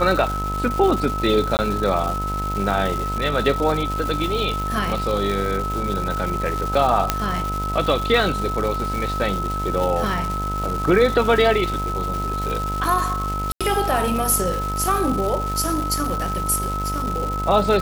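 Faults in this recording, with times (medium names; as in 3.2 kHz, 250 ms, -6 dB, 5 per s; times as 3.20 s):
buzz 50 Hz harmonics 21 -27 dBFS
crackle 460 per s -25 dBFS
whine 1.3 kHz -25 dBFS
1.57–1.59 s: dropout 19 ms
7.10 s: pop -2 dBFS
13.52–13.61 s: dropout 86 ms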